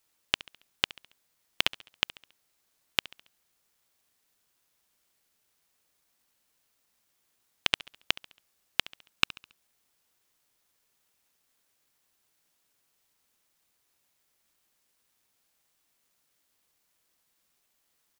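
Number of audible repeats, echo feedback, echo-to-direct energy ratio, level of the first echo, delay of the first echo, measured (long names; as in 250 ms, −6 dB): 3, 46%, −18.5 dB, −19.5 dB, 69 ms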